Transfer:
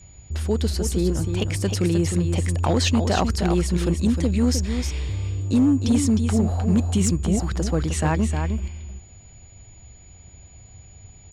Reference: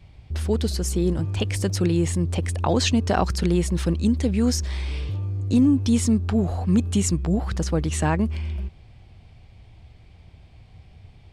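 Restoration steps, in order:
clipped peaks rebuilt −12.5 dBFS
notch filter 6,900 Hz, Q 30
echo removal 309 ms −7 dB

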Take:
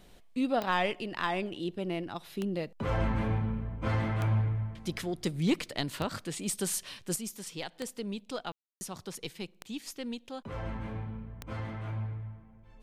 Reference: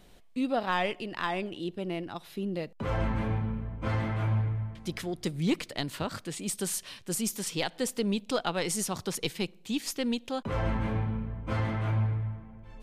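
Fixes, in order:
click removal
ambience match 0:08.52–0:08.81
level 0 dB, from 0:07.16 +8 dB

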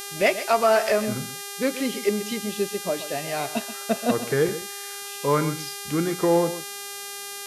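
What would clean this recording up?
clipped peaks rebuilt −10 dBFS
hum removal 402.1 Hz, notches 32
echo removal 130 ms −13 dB

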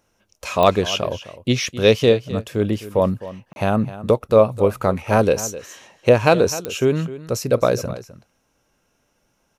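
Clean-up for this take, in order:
click removal
repair the gap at 0:03.53, 31 ms
echo removal 258 ms −15.5 dB

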